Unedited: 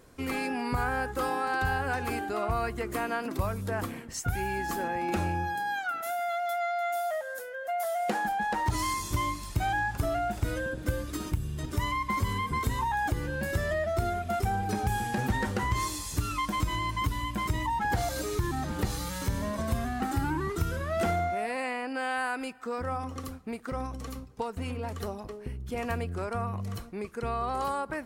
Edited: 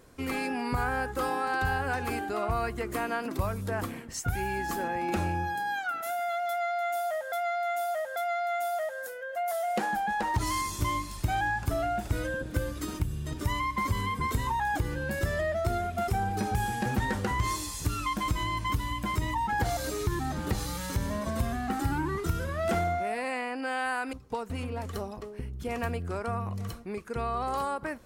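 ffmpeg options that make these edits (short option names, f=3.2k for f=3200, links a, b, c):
-filter_complex "[0:a]asplit=4[a][b][c][d];[a]atrim=end=7.322[e];[b]atrim=start=6.478:end=7.322[f];[c]atrim=start=6.478:end=22.452[g];[d]atrim=start=24.198[h];[e][f]acrossfade=d=0.004:c1=hsin:c2=hsin[i];[i][g]acrossfade=d=0.004:c1=hsin:c2=hsin[j];[j][h]acrossfade=d=0.004:c1=hsin:c2=hsin"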